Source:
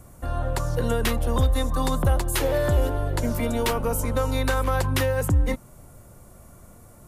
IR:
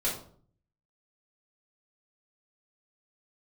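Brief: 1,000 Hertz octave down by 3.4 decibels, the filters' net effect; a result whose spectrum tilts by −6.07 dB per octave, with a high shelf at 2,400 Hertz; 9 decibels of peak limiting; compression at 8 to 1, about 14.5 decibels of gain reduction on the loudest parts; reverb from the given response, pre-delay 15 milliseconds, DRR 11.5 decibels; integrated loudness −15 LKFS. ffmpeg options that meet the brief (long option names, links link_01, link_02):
-filter_complex "[0:a]equalizer=frequency=1000:width_type=o:gain=-3.5,highshelf=frequency=2400:gain=-5,acompressor=threshold=-31dB:ratio=8,alimiter=level_in=7.5dB:limit=-24dB:level=0:latency=1,volume=-7.5dB,asplit=2[link_01][link_02];[1:a]atrim=start_sample=2205,adelay=15[link_03];[link_02][link_03]afir=irnorm=-1:irlink=0,volume=-18.5dB[link_04];[link_01][link_04]amix=inputs=2:normalize=0,volume=26.5dB"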